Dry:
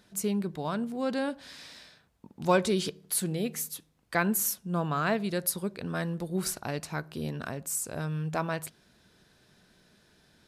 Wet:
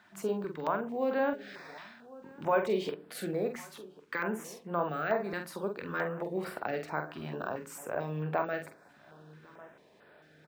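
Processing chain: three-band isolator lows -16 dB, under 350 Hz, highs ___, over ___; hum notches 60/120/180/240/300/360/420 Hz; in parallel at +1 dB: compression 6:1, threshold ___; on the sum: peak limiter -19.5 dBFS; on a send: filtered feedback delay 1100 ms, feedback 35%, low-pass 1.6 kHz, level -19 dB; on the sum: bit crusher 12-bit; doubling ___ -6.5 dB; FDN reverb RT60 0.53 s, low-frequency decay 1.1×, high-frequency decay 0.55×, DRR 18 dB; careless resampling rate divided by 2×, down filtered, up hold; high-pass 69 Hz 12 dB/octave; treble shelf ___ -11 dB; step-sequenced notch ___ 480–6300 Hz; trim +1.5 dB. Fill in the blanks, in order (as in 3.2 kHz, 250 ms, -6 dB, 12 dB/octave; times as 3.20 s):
-18 dB, 2.4 kHz, -42 dBFS, 46 ms, 10 kHz, 4.5 Hz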